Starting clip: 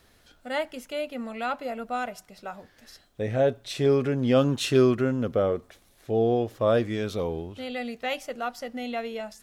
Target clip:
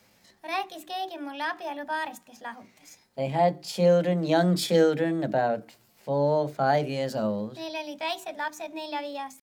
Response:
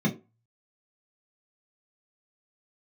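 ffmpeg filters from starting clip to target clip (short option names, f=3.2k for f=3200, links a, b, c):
-filter_complex "[0:a]highpass=f=180:p=1,asetrate=55563,aresample=44100,atempo=0.793701,asplit=2[a][b];[1:a]atrim=start_sample=2205[c];[b][c]afir=irnorm=-1:irlink=0,volume=-20dB[d];[a][d]amix=inputs=2:normalize=0"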